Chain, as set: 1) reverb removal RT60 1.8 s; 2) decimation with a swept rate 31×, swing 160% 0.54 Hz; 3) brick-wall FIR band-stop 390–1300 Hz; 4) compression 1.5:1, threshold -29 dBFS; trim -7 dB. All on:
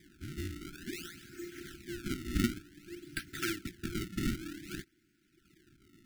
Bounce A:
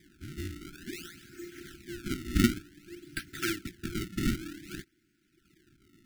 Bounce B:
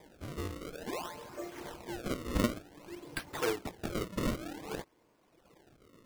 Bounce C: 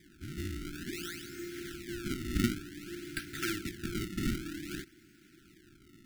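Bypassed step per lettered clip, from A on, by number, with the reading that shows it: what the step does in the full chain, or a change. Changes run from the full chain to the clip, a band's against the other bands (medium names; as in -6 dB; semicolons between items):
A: 4, crest factor change +2.5 dB; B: 3, 1 kHz band +8.5 dB; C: 1, momentary loudness spread change -3 LU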